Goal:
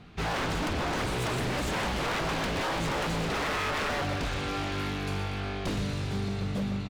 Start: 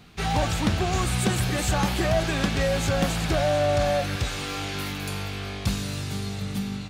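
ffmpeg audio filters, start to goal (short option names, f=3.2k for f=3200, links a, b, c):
-af "aemphasis=mode=reproduction:type=75fm,aecho=1:1:120|240|360|480|600|720:0.282|0.161|0.0916|0.0522|0.0298|0.017,aeval=exprs='0.0562*(abs(mod(val(0)/0.0562+3,4)-2)-1)':c=same"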